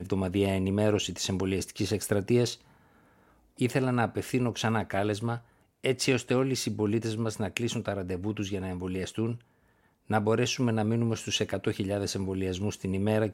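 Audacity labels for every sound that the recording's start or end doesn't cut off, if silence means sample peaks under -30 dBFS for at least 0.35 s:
3.610000	5.360000	sound
5.850000	9.330000	sound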